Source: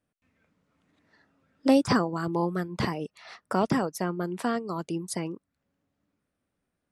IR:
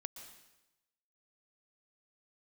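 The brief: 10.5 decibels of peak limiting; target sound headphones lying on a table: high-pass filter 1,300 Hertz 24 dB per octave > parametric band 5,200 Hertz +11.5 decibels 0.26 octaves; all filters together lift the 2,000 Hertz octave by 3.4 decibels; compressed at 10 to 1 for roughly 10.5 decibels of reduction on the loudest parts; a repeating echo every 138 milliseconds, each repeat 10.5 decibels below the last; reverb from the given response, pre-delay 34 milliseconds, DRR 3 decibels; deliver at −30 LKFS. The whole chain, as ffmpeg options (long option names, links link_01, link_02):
-filter_complex "[0:a]equalizer=frequency=2000:width_type=o:gain=5,acompressor=threshold=-25dB:ratio=10,alimiter=limit=-24dB:level=0:latency=1,aecho=1:1:138|276|414:0.299|0.0896|0.0269,asplit=2[link_01][link_02];[1:a]atrim=start_sample=2205,adelay=34[link_03];[link_02][link_03]afir=irnorm=-1:irlink=0,volume=0.5dB[link_04];[link_01][link_04]amix=inputs=2:normalize=0,highpass=frequency=1300:width=0.5412,highpass=frequency=1300:width=1.3066,equalizer=frequency=5200:width_type=o:width=0.26:gain=11.5,volume=9dB"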